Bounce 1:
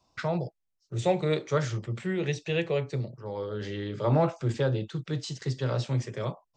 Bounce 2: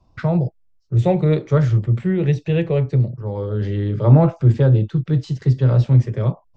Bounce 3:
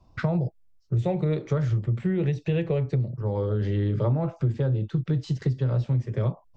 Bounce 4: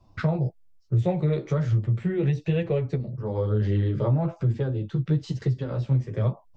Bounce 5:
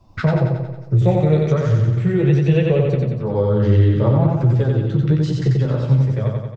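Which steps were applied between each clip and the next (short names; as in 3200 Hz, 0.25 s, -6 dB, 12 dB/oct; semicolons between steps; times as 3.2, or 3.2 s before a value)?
RIAA curve playback; gain +4 dB
compressor 10:1, threshold -21 dBFS, peak gain reduction 15.5 dB
flange 1.1 Hz, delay 8.5 ms, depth 6.7 ms, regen -12%; gain +3.5 dB
ending faded out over 0.53 s; on a send: feedback echo 91 ms, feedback 58%, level -3 dB; on the sum: gain +6.5 dB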